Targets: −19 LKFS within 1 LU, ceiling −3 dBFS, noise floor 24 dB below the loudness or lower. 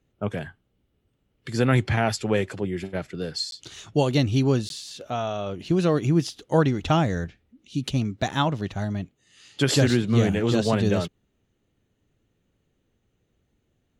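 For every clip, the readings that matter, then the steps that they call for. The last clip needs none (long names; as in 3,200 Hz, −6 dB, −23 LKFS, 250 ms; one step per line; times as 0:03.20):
number of dropouts 2; longest dropout 12 ms; integrated loudness −24.5 LKFS; sample peak −6.0 dBFS; target loudness −19.0 LKFS
→ repair the gap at 0:03.51/0:04.69, 12 ms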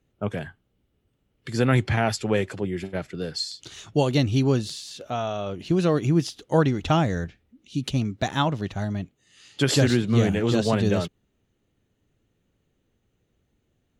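number of dropouts 0; integrated loudness −24.5 LKFS; sample peak −6.0 dBFS; target loudness −19.0 LKFS
→ level +5.5 dB
brickwall limiter −3 dBFS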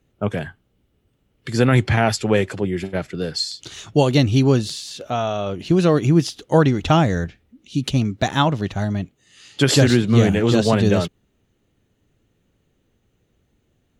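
integrated loudness −19.0 LKFS; sample peak −3.0 dBFS; background noise floor −67 dBFS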